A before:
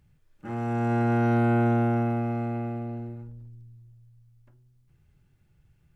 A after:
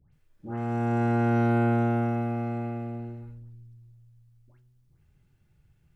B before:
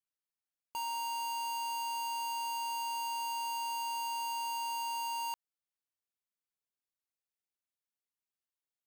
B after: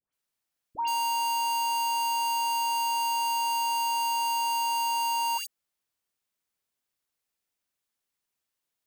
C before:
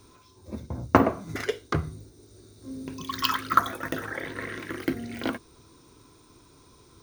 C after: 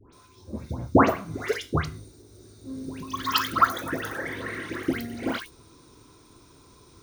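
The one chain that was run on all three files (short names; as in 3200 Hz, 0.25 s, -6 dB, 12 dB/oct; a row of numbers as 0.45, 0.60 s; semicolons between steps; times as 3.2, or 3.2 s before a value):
dispersion highs, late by 0.13 s, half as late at 1500 Hz; match loudness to -27 LUFS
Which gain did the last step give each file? -1.0, +9.0, +1.5 dB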